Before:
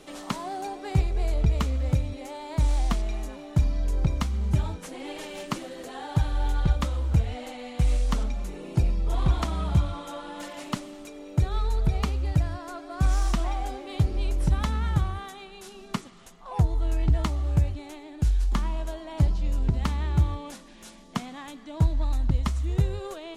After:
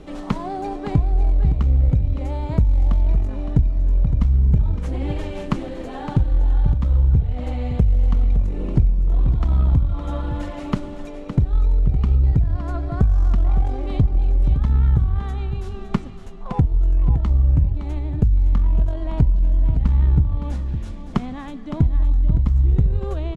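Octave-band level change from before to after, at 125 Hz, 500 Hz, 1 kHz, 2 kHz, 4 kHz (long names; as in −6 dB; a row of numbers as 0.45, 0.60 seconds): +7.5, +3.5, +0.5, −2.0, −5.5 decibels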